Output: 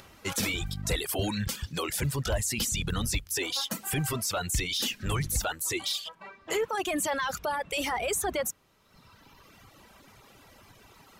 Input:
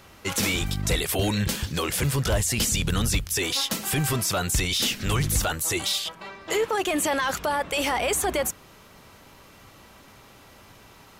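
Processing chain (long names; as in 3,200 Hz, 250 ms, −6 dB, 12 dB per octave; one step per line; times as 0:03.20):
reverb reduction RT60 1.7 s
upward compression, threshold −45 dBFS
level −4 dB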